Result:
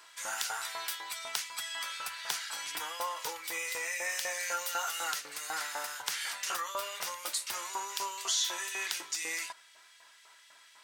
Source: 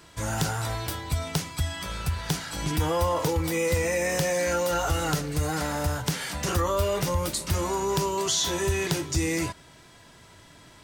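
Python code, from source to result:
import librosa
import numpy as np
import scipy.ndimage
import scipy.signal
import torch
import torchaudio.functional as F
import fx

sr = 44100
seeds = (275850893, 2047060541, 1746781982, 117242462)

p1 = fx.high_shelf(x, sr, hz=10000.0, db=6.0, at=(4.4, 5.11))
p2 = fx.rider(p1, sr, range_db=10, speed_s=0.5)
p3 = p1 + F.gain(torch.from_numpy(p2), -1.5).numpy()
p4 = fx.filter_lfo_highpass(p3, sr, shape='saw_up', hz=4.0, low_hz=870.0, high_hz=2400.0, q=1.0)
y = F.gain(torch.from_numpy(p4), -9.0).numpy()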